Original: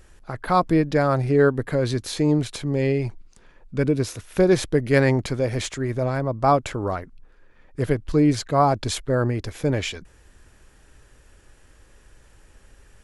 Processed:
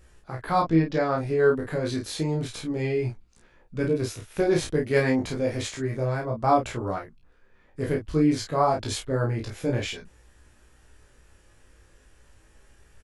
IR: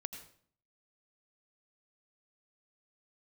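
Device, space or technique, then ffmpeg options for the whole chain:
double-tracked vocal: -filter_complex "[0:a]asplit=2[link_01][link_02];[link_02]adelay=31,volume=-3.5dB[link_03];[link_01][link_03]amix=inputs=2:normalize=0,flanger=delay=17:depth=2.4:speed=0.3,asettb=1/sr,asplit=3[link_04][link_05][link_06];[link_04]atrim=end=0.624[link_07];[link_05]atrim=start=0.62:end=1.18,asetpts=PTS-STARTPTS,afade=type=in:duration=0.004:curve=qsin,afade=type=out:start_time=0.556:duration=0.004:curve=qsin,lowpass=frequency=6400:width=0.5412,lowpass=frequency=6400:width=1.3066[link_08];[link_06]atrim=start=1.176[link_09];[link_07][link_08]acrossfade=duration=0.004:curve1=hsin:curve2=qsin[link_10];[link_10][link_09]acrossfade=duration=0.004:curve1=qsin:curve2=hsin,volume=-2dB"

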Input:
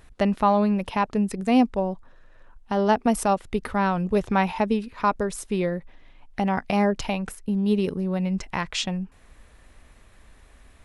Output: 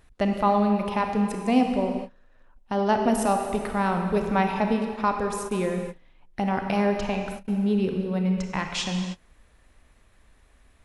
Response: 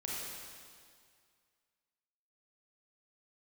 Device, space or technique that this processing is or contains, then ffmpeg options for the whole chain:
keyed gated reverb: -filter_complex "[0:a]asettb=1/sr,asplit=3[link_01][link_02][link_03];[link_01]atrim=end=6.984[link_04];[link_02]atrim=start=6.98:end=8.03,asetpts=PTS-STARTPTS,afade=type=in:duration=0.004:curve=qsin,afade=type=out:start_time=1.046:duration=0.004:curve=qsin,aemphasis=mode=reproduction:type=cd[link_05];[link_03]atrim=start=8.026[link_06];[link_04][link_05]acrossfade=duration=0.004:curve1=hsin:curve2=qsin[link_07];[link_07][link_06]acrossfade=duration=0.004:curve1=qsin:curve2=hsin,asplit=3[link_08][link_09][link_10];[1:a]atrim=start_sample=2205[link_11];[link_09][link_11]afir=irnorm=-1:irlink=0[link_12];[link_10]apad=whole_len=478135[link_13];[link_12][link_13]sidechaingate=range=-33dB:threshold=-40dB:ratio=16:detection=peak,volume=-1dB[link_14];[link_08][link_14]amix=inputs=2:normalize=0,volume=-6dB"

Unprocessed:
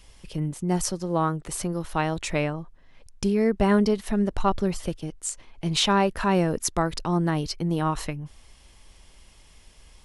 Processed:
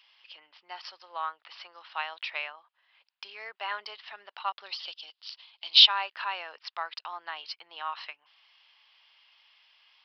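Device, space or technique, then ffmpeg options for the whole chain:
musical greeting card: -filter_complex "[0:a]aresample=11025,aresample=44100,highpass=frequency=880:width=0.5412,highpass=frequency=880:width=1.3066,equalizer=frequency=2900:width_type=o:width=0.56:gain=7,asettb=1/sr,asplit=3[link_01][link_02][link_03];[link_01]atrim=end=4.664[link_04];[link_02]atrim=start=4.66:end=5.87,asetpts=PTS-STARTPTS,afade=type=in:duration=0.004:curve=qsin,afade=type=out:start_time=1.206:duration=0.004:curve=qsin,highshelf=frequency=2800:width_type=q:width=1.5:gain=10[link_05];[link_03]atrim=start=5.866[link_06];[link_04][link_05]acrossfade=duration=0.004:curve1=hsin:curve2=qsin[link_07];[link_07][link_06]acrossfade=duration=0.004:curve1=qsin:curve2=hsin,volume=-5dB"

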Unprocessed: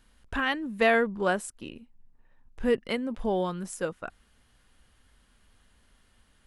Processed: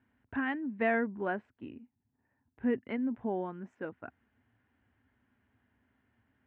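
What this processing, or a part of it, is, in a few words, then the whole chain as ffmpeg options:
bass cabinet: -filter_complex "[0:a]highpass=frequency=82:width=0.5412,highpass=frequency=82:width=1.3066,equalizer=frequency=110:width_type=q:width=4:gain=5,equalizer=frequency=170:width_type=q:width=4:gain=-7,equalizer=frequency=260:width_type=q:width=4:gain=7,equalizer=frequency=520:width_type=q:width=4:gain=-7,equalizer=frequency=1200:width_type=q:width=4:gain=-8,lowpass=frequency=2100:width=0.5412,lowpass=frequency=2100:width=1.3066,asettb=1/sr,asplit=3[link_01][link_02][link_03];[link_01]atrim=end=3.104[link_04];[link_02]atrim=start=3.1:end=3.75,asetpts=PTS-STARTPTS,afade=type=in:duration=0.004:curve=qsin,afade=type=out:start_time=0.646:duration=0.004:curve=qsin,highshelf=frequency=5500:width_type=q:width=3:gain=7.5[link_05];[link_03]atrim=start=3.746[link_06];[link_04][link_05]acrossfade=duration=0.004:curve1=hsin:curve2=qsin[link_07];[link_07][link_06]acrossfade=duration=0.004:curve1=qsin:curve2=hsin,volume=-5dB"

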